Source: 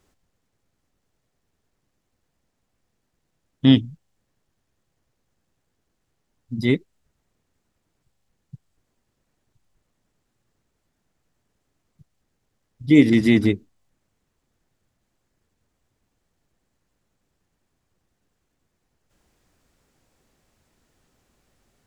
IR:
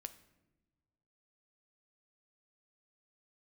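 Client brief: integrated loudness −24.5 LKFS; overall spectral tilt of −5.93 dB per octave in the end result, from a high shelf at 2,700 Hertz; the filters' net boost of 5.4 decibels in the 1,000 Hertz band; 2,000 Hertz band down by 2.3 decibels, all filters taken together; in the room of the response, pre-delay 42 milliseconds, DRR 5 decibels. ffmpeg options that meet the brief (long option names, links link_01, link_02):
-filter_complex "[0:a]equalizer=frequency=1000:width_type=o:gain=7.5,equalizer=frequency=2000:width_type=o:gain=-7,highshelf=frequency=2700:gain=8,asplit=2[link_01][link_02];[1:a]atrim=start_sample=2205,adelay=42[link_03];[link_02][link_03]afir=irnorm=-1:irlink=0,volume=-0.5dB[link_04];[link_01][link_04]amix=inputs=2:normalize=0,volume=-7.5dB"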